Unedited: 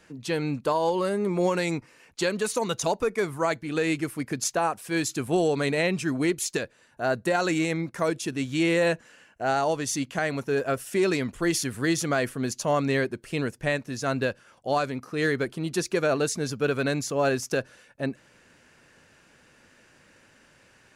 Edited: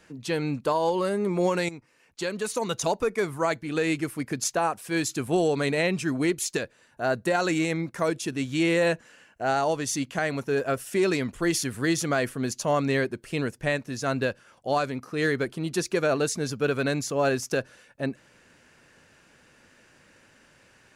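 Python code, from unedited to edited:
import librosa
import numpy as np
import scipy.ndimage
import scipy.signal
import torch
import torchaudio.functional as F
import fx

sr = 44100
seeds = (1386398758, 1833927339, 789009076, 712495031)

y = fx.edit(x, sr, fx.fade_in_from(start_s=1.69, length_s=1.13, floor_db=-13.5), tone=tone)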